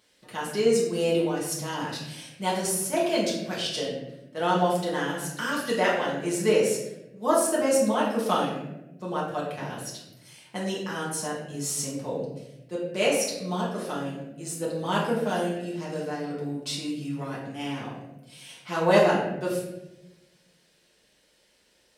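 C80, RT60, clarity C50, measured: 5.0 dB, 1.0 s, 2.5 dB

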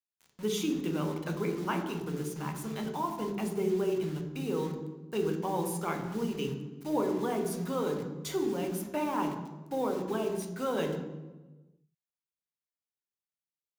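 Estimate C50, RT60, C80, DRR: 6.5 dB, 1.2 s, 9.0 dB, 3.0 dB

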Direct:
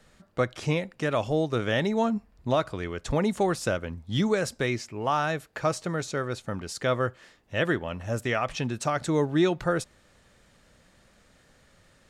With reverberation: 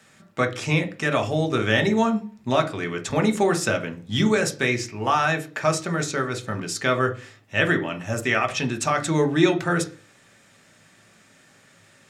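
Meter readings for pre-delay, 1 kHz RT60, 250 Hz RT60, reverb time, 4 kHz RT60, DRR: 3 ms, 0.40 s, 0.50 s, 0.40 s, 0.45 s, 5.5 dB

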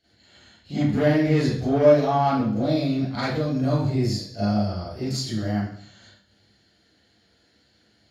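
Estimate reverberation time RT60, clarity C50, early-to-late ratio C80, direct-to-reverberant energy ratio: 0.60 s, −2.0 dB, 4.0 dB, −13.0 dB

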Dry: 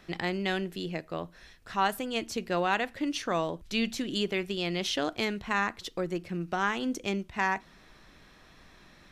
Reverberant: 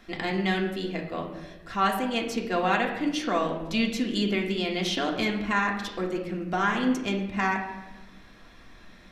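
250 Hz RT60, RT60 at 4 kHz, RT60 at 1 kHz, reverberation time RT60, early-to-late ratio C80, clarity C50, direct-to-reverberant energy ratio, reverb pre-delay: 1.7 s, 0.75 s, 0.95 s, 1.1 s, 9.0 dB, 6.5 dB, −1.0 dB, 3 ms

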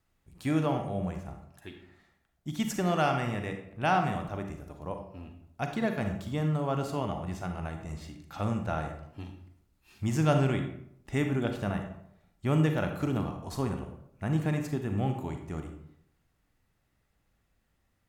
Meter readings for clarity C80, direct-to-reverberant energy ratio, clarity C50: 10.0 dB, 5.0 dB, 6.5 dB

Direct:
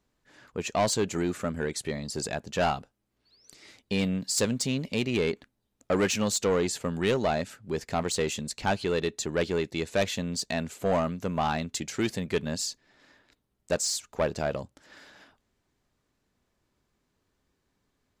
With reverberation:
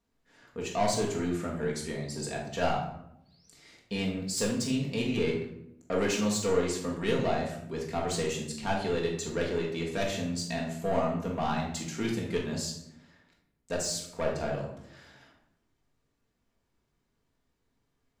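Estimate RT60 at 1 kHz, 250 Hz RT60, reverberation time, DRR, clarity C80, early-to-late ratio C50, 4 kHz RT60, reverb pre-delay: 0.70 s, 1.2 s, 0.80 s, −3.0 dB, 8.0 dB, 4.5 dB, 0.50 s, 4 ms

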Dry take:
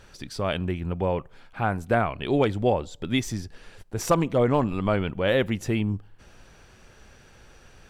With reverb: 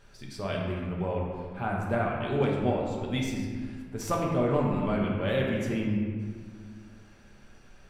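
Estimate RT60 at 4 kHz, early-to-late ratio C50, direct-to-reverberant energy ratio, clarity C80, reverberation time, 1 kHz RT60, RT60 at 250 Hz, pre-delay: 1.1 s, 1.0 dB, −3.0 dB, 3.0 dB, 1.7 s, 1.6 s, 2.6 s, 5 ms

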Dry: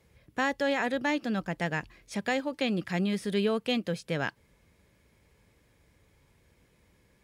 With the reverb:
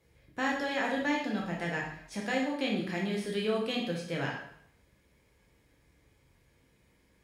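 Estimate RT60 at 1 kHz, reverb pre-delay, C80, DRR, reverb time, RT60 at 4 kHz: 0.70 s, 5 ms, 7.5 dB, −2.5 dB, 0.70 s, 0.65 s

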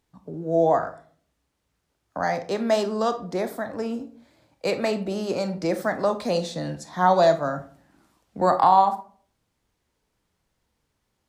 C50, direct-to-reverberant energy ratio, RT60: 12.5 dB, 8.5 dB, 0.45 s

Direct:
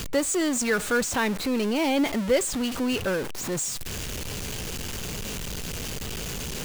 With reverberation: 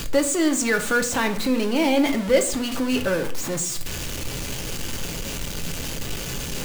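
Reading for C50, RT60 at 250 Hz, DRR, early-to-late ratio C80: 12.5 dB, 0.70 s, 5.5 dB, 16.5 dB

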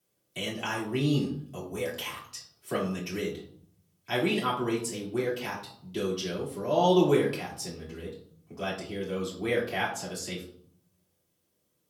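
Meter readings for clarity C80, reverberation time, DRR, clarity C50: 10.0 dB, 0.60 s, −7.5 dB, 6.5 dB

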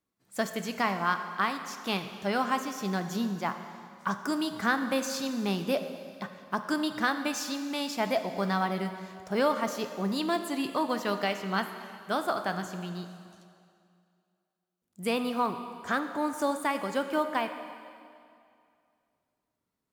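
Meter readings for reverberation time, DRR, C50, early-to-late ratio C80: 2.4 s, 7.5 dB, 9.0 dB, 9.5 dB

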